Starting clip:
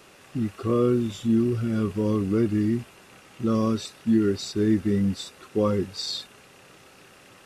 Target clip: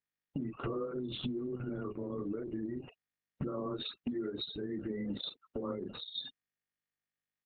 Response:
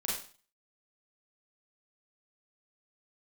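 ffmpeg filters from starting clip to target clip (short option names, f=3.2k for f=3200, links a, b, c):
-filter_complex "[0:a]afreqshift=14,highpass=f=59:p=1,asettb=1/sr,asplit=3[a][b][c];[a]atrim=end=0.914[d];[b]atrim=start=0.91:end=3.48,asetpts=PTS-STARTPTS,afade=t=in:d=0.004:c=qsin,afade=t=out:st=2.566:d=0.004:c=qsin,adynamicequalizer=threshold=0.0178:dfrequency=170:dqfactor=1.3:tfrequency=170:tqfactor=1.3:attack=5:release=100:ratio=0.375:range=2:mode=cutabove:tftype=bell[e];[c]atrim=start=3.476[f];[d][e]acrossfade=d=0.004:c1=hsin:c2=qsin[g];[g][f]acrossfade=d=0.004:c1=qsin:c2=hsin,acrossover=split=280[h][i];[h]acompressor=threshold=-34dB:ratio=8[j];[j][i]amix=inputs=2:normalize=0,agate=range=-19dB:threshold=-42dB:ratio=16:detection=peak,alimiter=limit=-24dB:level=0:latency=1:release=26,highshelf=f=6k:g=2.5,bandreject=f=390:w=12,aecho=1:1:14|40:0.178|0.531,acompressor=threshold=-39dB:ratio=20,afftfilt=real='re*gte(hypot(re,im),0.00447)':imag='im*gte(hypot(re,im),0.00447)':win_size=1024:overlap=0.75,volume=6dB" -ar 48000 -c:a libopus -b:a 6k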